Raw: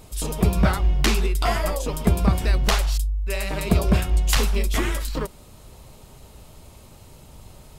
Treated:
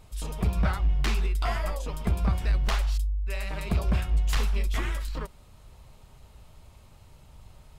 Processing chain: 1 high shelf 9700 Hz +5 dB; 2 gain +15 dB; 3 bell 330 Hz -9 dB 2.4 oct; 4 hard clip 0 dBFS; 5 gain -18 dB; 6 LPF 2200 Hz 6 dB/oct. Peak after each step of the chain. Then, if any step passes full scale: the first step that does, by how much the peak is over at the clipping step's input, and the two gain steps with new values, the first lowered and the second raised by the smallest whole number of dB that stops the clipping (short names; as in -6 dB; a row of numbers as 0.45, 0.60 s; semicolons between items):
-7.5, +7.5, +8.0, 0.0, -18.0, -18.0 dBFS; step 2, 8.0 dB; step 2 +7 dB, step 5 -10 dB